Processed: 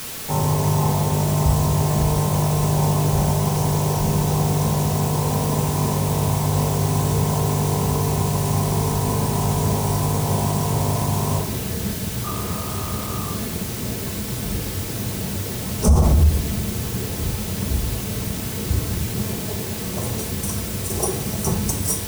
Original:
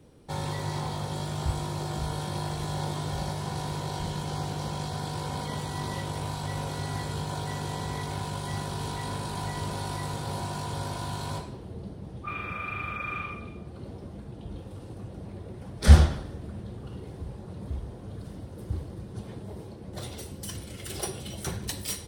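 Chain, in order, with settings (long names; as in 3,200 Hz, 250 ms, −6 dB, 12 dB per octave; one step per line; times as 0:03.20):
elliptic band-stop filter 1,100–5,900 Hz
background noise white −44 dBFS
convolution reverb RT60 0.70 s, pre-delay 5 ms, DRR 4.5 dB
boost into a limiter +17 dB
level −6 dB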